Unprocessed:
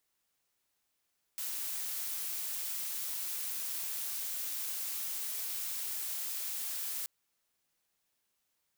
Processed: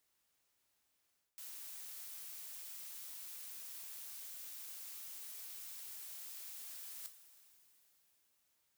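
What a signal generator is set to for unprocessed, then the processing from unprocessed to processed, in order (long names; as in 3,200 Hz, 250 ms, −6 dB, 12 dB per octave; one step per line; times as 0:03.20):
noise blue, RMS −37.5 dBFS 5.68 s
coupled-rooms reverb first 0.25 s, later 3.7 s, from −20 dB, DRR 14.5 dB
reversed playback
downward compressor 6 to 1, threshold −47 dBFS
reversed playback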